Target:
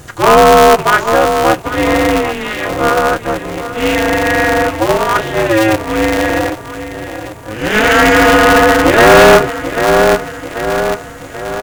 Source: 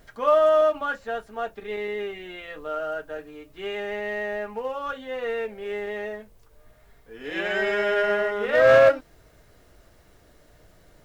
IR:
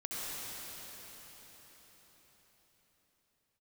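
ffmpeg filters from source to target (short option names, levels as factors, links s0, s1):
-af "asetrate=41895,aresample=44100,superequalizer=15b=2.82:16b=2,aecho=1:1:787|1574|2361|3148|3935:0.237|0.123|0.0641|0.0333|0.0173,aeval=exprs='0.75*(cos(1*acos(clip(val(0)/0.75,-1,1)))-cos(1*PI/2))+0.0299*(cos(5*acos(clip(val(0)/0.75,-1,1)))-cos(5*PI/2))':c=same,apsyclip=7.5,aeval=exprs='val(0)*sgn(sin(2*PI*110*n/s))':c=same,volume=0.841"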